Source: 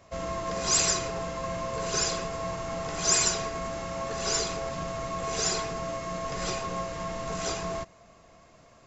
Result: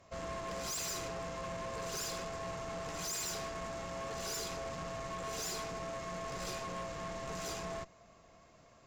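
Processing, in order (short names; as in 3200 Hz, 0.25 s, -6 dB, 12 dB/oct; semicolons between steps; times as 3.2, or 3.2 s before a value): tube stage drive 34 dB, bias 0.55; gain -3 dB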